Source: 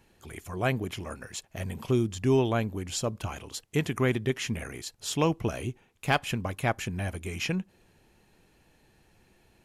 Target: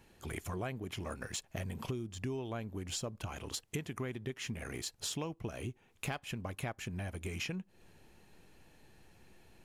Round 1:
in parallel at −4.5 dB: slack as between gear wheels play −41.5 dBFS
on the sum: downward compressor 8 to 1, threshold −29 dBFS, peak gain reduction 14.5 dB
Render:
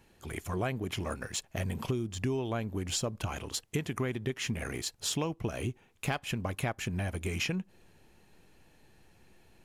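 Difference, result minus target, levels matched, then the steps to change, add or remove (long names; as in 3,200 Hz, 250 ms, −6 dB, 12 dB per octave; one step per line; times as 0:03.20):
downward compressor: peak gain reduction −6.5 dB
change: downward compressor 8 to 1, threshold −36.5 dBFS, peak gain reduction 21 dB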